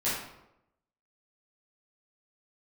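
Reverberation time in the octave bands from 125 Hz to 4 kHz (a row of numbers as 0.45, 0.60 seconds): 0.90, 0.90, 0.90, 0.80, 0.65, 0.55 seconds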